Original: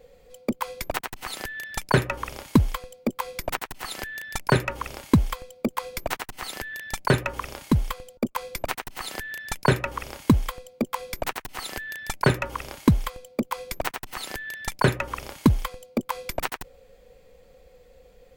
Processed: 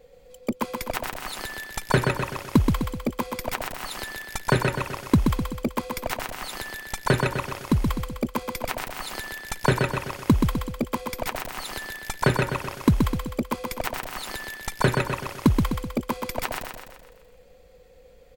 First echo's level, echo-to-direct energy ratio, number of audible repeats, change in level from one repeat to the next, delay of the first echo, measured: -4.5 dB, -3.0 dB, 6, -6.0 dB, 127 ms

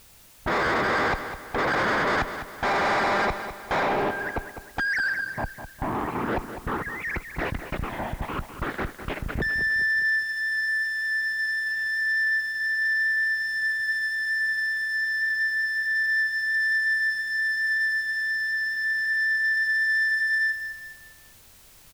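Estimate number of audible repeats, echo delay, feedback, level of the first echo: 4, 203 ms, 42%, -10.5 dB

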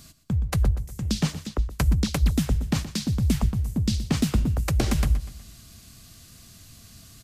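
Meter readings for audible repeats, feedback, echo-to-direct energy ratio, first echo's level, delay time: 3, 43%, -13.0 dB, -14.0 dB, 122 ms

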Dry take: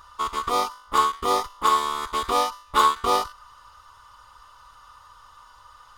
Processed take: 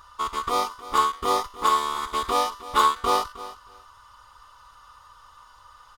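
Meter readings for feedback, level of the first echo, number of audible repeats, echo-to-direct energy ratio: 17%, -16.0 dB, 2, -16.0 dB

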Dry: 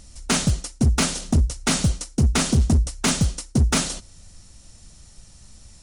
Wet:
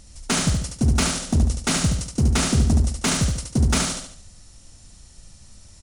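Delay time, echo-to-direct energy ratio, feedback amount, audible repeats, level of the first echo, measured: 72 ms, -3.0 dB, 41%, 5, -4.0 dB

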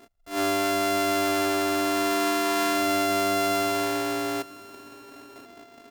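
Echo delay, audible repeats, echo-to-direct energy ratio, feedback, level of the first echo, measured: 1034 ms, 2, -20.5 dB, 24%, -20.5 dB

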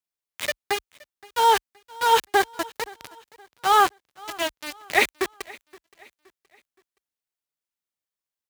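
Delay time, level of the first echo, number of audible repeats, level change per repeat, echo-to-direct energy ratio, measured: 521 ms, -23.0 dB, 2, -8.0 dB, -22.5 dB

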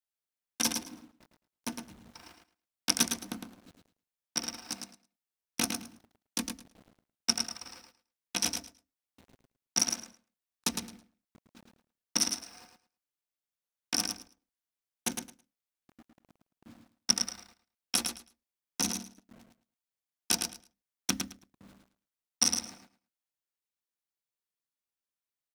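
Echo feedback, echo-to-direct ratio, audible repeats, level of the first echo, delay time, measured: 17%, -6.0 dB, 2, -6.0 dB, 108 ms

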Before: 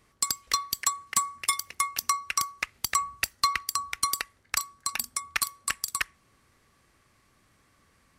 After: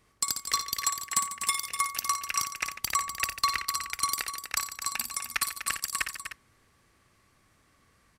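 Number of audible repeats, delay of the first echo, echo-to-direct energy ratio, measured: 5, 57 ms, -4.0 dB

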